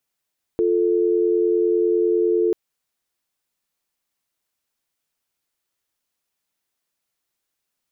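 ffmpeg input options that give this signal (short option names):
-f lavfi -i "aevalsrc='0.119*(sin(2*PI*350*t)+sin(2*PI*440*t))':d=1.94:s=44100"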